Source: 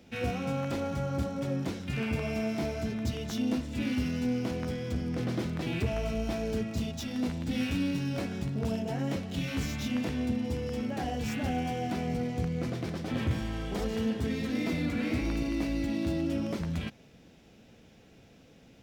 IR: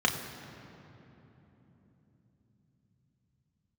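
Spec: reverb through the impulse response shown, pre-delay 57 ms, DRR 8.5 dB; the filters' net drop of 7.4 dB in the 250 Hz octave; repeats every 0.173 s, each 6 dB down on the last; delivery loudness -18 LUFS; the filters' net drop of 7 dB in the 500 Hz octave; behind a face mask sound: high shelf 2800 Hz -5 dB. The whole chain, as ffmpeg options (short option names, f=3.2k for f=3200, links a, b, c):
-filter_complex "[0:a]equalizer=f=250:t=o:g=-7.5,equalizer=f=500:t=o:g=-6.5,aecho=1:1:173|346|519|692|865|1038:0.501|0.251|0.125|0.0626|0.0313|0.0157,asplit=2[a][b];[1:a]atrim=start_sample=2205,adelay=57[c];[b][c]afir=irnorm=-1:irlink=0,volume=-20.5dB[d];[a][d]amix=inputs=2:normalize=0,highshelf=f=2.8k:g=-5,volume=17dB"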